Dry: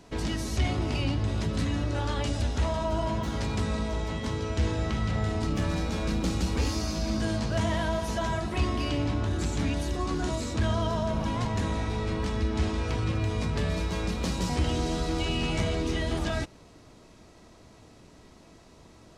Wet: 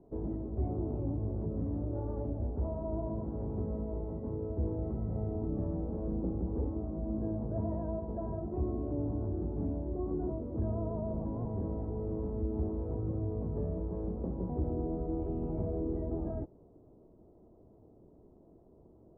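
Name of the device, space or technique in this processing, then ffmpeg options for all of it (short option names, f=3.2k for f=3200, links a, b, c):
under water: -af "lowpass=f=740:w=0.5412,lowpass=f=740:w=1.3066,equalizer=f=380:t=o:w=0.58:g=6,volume=-7dB"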